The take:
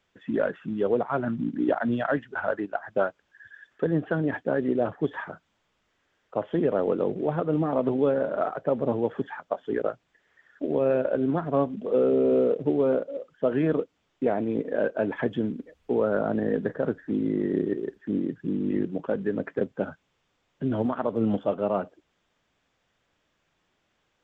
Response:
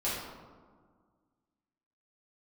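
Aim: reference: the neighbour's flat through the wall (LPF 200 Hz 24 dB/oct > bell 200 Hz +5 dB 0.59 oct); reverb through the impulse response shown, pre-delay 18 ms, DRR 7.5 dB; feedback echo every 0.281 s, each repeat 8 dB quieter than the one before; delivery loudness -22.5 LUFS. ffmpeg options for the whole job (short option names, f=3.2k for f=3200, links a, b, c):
-filter_complex "[0:a]aecho=1:1:281|562|843|1124|1405:0.398|0.159|0.0637|0.0255|0.0102,asplit=2[a][b];[1:a]atrim=start_sample=2205,adelay=18[c];[b][c]afir=irnorm=-1:irlink=0,volume=-14.5dB[d];[a][d]amix=inputs=2:normalize=0,lowpass=f=200:w=0.5412,lowpass=f=200:w=1.3066,equalizer=f=200:t=o:w=0.59:g=5,volume=11dB"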